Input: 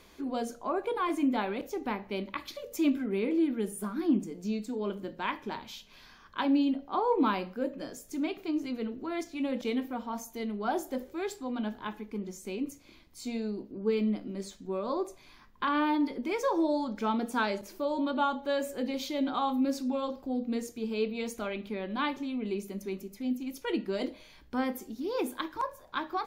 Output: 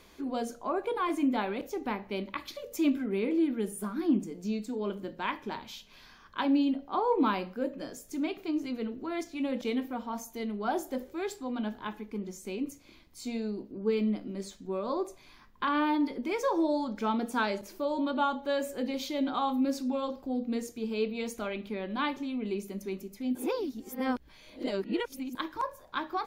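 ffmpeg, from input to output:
-filter_complex "[0:a]asplit=3[s0][s1][s2];[s0]atrim=end=23.352[s3];[s1]atrim=start=23.348:end=25.352,asetpts=PTS-STARTPTS,areverse[s4];[s2]atrim=start=25.348[s5];[s3][s4]acrossfade=d=0.004:c1=hsin:c2=hsin[s6];[s6][s5]acrossfade=d=0.004:c1=hsin:c2=hsin"

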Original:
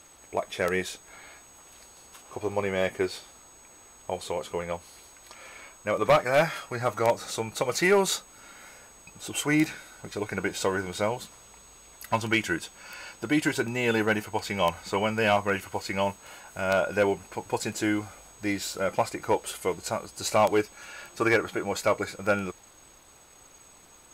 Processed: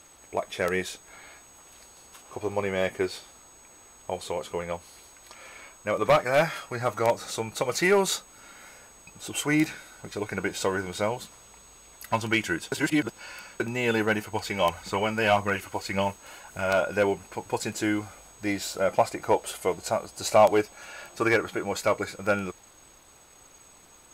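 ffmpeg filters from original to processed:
-filter_complex "[0:a]asettb=1/sr,asplit=3[s0][s1][s2];[s0]atrim=end=14.324[s3];[s1]atrim=start=14.32:end=16.83,asetpts=PTS-STARTPTS,afade=t=in:d=0.004:c=qsin,afade=t=out:st=2.506:d=0.004:c=qsin,aphaser=in_gain=1:out_gain=1:delay=3.9:decay=0.35:speed=1.8:type=triangular[s4];[s2]atrim=start=16.826[s5];[s3][s4]acrossfade=d=0.004:c1=hsin:c2=qsin[s6];[s6][s5]acrossfade=d=0.004:c1=qsin:c2=hsin,asettb=1/sr,asplit=3[s7][s8][s9];[s7]atrim=end=18.474[s10];[s8]atrim=start=18.47:end=21.18,asetpts=PTS-STARTPTS,afade=t=in:d=0.004:c=qsin,afade=t=out:st=2.706:d=0.004:c=qsin,equalizer=f=670:w=2.4:g=6[s11];[s9]atrim=start=21.176[s12];[s10][s11]acrossfade=d=0.004:c1=hsin:c2=qsin[s13];[s13][s12]acrossfade=d=0.004:c1=qsin:c2=hsin,asplit=3[s14][s15][s16];[s14]atrim=end=12.722[s17];[s15]atrim=start=12.718:end=13.602,asetpts=PTS-STARTPTS,areverse[s18];[s16]atrim=start=13.598[s19];[s17][s18]acrossfade=d=0.004:c1=hsin:c2=hsin[s20];[s20][s19]acrossfade=d=0.004:c1=hsin:c2=hsin"

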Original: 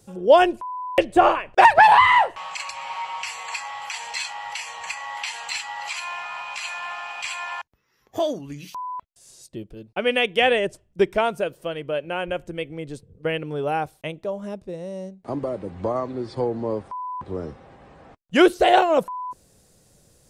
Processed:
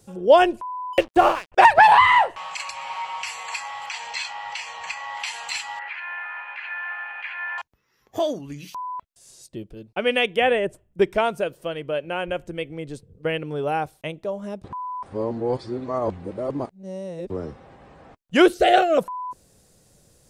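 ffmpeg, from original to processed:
-filter_complex "[0:a]asettb=1/sr,asplit=3[s0][s1][s2];[s0]atrim=end=0.934[s3];[s1]atrim=start=0.93:end=1.52,asetpts=PTS-STARTPTS,afade=t=in:d=0.004:c=qsin,afade=t=out:st=0.586:d=0.004:c=qsin,aeval=exprs='sgn(val(0))*max(abs(val(0))-0.0211,0)':c=same[s4];[s2]atrim=start=1.516[s5];[s3][s4]acrossfade=d=0.004:c1=hsin:c2=qsin[s6];[s6][s5]acrossfade=d=0.004:c1=qsin:c2=hsin,asettb=1/sr,asplit=3[s7][s8][s9];[s7]atrim=end=3.864[s10];[s8]atrim=start=3.86:end=5.2,asetpts=PTS-STARTPTS,afade=t=in:d=0.004:c=qsin,afade=t=out:st=1.336:d=0.004:c=qsin,lowpass=6200[s11];[s9]atrim=start=5.196[s12];[s10][s11]acrossfade=d=0.004:c1=hsin:c2=qsin[s13];[s13][s12]acrossfade=d=0.004:c1=qsin:c2=hsin,asettb=1/sr,asplit=3[s14][s15][s16];[s14]atrim=end=5.794[s17];[s15]atrim=start=5.79:end=7.58,asetpts=PTS-STARTPTS,afade=t=in:d=0.004:c=qsin,afade=t=out:st=1.786:d=0.004:c=qsin,highpass=480,equalizer=f=680:t=q:w=4:g=-9,equalizer=f=1100:t=q:w=4:g=-9,equalizer=f=1700:t=q:w=4:g=9,lowpass=f=2300:w=0.5412,lowpass=f=2300:w=1.3066[s18];[s16]atrim=start=7.576[s19];[s17][s18]acrossfade=d=0.004:c1=hsin:c2=qsin[s20];[s20][s19]acrossfade=d=0.004:c1=qsin:c2=hsin,asettb=1/sr,asplit=3[s21][s22][s23];[s21]atrim=end=10.364[s24];[s22]atrim=start=10.36:end=11.02,asetpts=PTS-STARTPTS,afade=t=in:d=0.004:c=qsin,afade=t=out:st=0.656:d=0.004:c=qsin,equalizer=f=5000:w=1.1:g=-12.5[s25];[s23]atrim=start=11.016[s26];[s24][s25]acrossfade=d=0.004:c1=hsin:c2=qsin[s27];[s27][s26]acrossfade=d=0.004:c1=qsin:c2=hsin,asettb=1/sr,asplit=3[s28][s29][s30];[s28]atrim=end=18.544[s31];[s29]atrim=start=18.54:end=18.98,asetpts=PTS-STARTPTS,afade=t=in:d=0.004:c=qsin,afade=t=out:st=0.436:d=0.004:c=qsin,asuperstop=centerf=960:order=12:qfactor=2.8[s32];[s30]atrim=start=18.976[s33];[s31][s32]acrossfade=d=0.004:c1=hsin:c2=qsin[s34];[s34][s33]acrossfade=d=0.004:c1=qsin:c2=hsin,asplit=3[s35][s36][s37];[s35]atrim=end=14.642[s38];[s36]atrim=start=14.638:end=17.302,asetpts=PTS-STARTPTS,areverse[s39];[s37]atrim=start=17.298[s40];[s38][s39]acrossfade=d=0.004:c1=hsin:c2=hsin[s41];[s41][s40]acrossfade=d=0.004:c1=hsin:c2=hsin"

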